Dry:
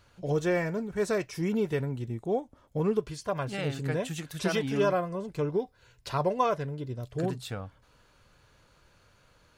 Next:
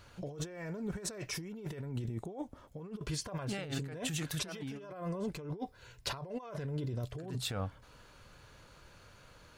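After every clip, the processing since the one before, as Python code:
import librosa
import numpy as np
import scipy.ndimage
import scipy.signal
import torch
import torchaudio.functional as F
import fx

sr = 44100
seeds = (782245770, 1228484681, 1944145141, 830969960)

y = fx.over_compress(x, sr, threshold_db=-38.0, ratio=-1.0)
y = y * 10.0 ** (-2.5 / 20.0)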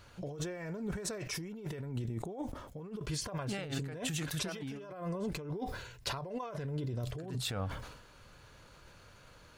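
y = fx.sustainer(x, sr, db_per_s=58.0)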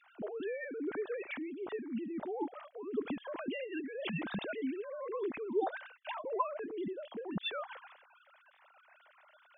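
y = fx.sine_speech(x, sr)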